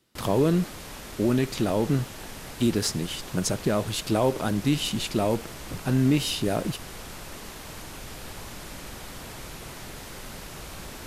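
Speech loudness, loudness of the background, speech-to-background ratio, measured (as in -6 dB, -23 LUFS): -26.0 LUFS, -39.5 LUFS, 13.5 dB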